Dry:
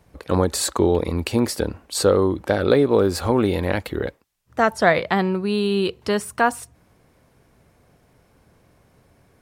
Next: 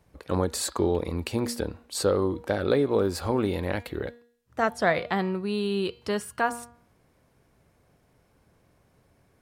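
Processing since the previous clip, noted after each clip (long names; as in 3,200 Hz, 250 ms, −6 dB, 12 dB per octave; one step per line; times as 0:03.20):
hum removal 237.7 Hz, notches 21
level −6.5 dB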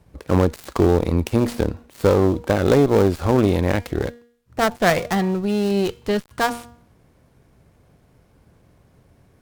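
gap after every zero crossing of 0.11 ms
low-shelf EQ 320 Hz +6.5 dB
harmonic generator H 6 −21 dB, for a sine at −7.5 dBFS
level +4.5 dB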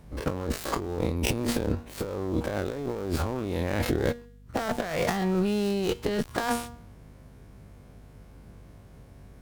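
every bin's largest magnitude spread in time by 60 ms
compressor whose output falls as the input rises −22 dBFS, ratio −1
mains hum 50 Hz, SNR 21 dB
level −6.5 dB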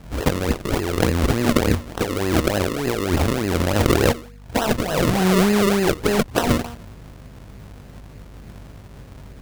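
sample-and-hold swept by an LFO 38×, swing 100% 3.4 Hz
level +9 dB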